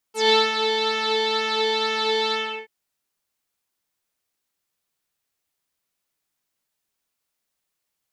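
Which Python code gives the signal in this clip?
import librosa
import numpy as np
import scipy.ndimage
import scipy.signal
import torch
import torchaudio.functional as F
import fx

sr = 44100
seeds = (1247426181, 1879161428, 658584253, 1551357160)

y = fx.sub_patch_pwm(sr, seeds[0], note=69, wave2='saw', interval_st=0, detune_cents=16, level2_db=-9.0, sub_db=-18, noise_db=-22.0, kind='lowpass', cutoff_hz=2300.0, q=5.2, env_oct=2.5, env_decay_s=0.08, env_sustain_pct=30, attack_ms=155.0, decay_s=0.22, sustain_db=-7, release_s=0.35, note_s=2.18, lfo_hz=2.1, width_pct=22, width_swing_pct=12)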